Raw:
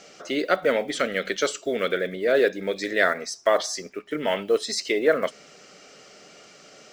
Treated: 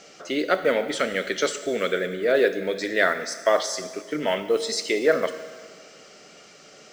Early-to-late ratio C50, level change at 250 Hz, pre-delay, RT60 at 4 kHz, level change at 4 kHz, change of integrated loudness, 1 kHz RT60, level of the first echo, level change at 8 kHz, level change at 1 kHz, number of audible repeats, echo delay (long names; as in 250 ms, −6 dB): 12.0 dB, +0.5 dB, 6 ms, 1.7 s, +0.5 dB, +0.5 dB, 1.8 s, no echo audible, +0.5 dB, +0.5 dB, no echo audible, no echo audible